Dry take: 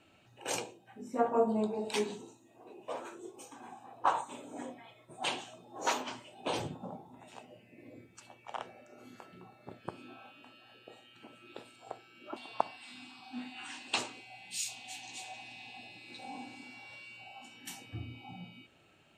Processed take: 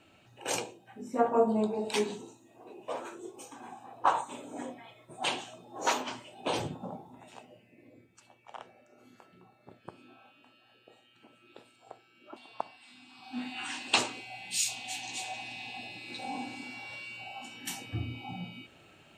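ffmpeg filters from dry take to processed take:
ffmpeg -i in.wav -af "volume=15dB,afade=type=out:start_time=6.99:duration=0.93:silence=0.398107,afade=type=in:start_time=13.06:duration=0.48:silence=0.251189" out.wav

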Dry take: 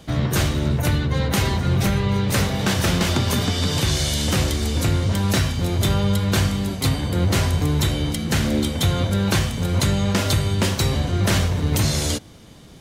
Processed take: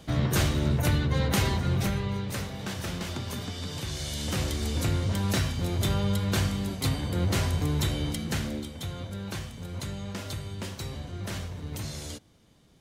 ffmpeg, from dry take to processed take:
ffmpeg -i in.wav -af "volume=2.5dB,afade=type=out:start_time=1.35:duration=1.07:silence=0.334965,afade=type=in:start_time=3.9:duration=0.79:silence=0.446684,afade=type=out:start_time=8.17:duration=0.49:silence=0.354813" out.wav

